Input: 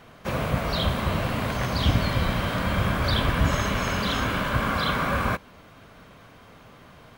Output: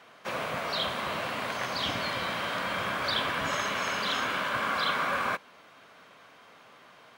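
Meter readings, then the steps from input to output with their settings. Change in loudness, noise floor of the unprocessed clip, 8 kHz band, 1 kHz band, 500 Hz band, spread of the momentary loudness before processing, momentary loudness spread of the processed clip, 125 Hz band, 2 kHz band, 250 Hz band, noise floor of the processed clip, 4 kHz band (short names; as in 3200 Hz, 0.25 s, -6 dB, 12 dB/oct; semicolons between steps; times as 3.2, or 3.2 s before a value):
-4.5 dB, -50 dBFS, -3.0 dB, -2.5 dB, -5.0 dB, 4 LU, 5 LU, -19.5 dB, -1.5 dB, -12.0 dB, -55 dBFS, -1.5 dB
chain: weighting filter A; gain -2.5 dB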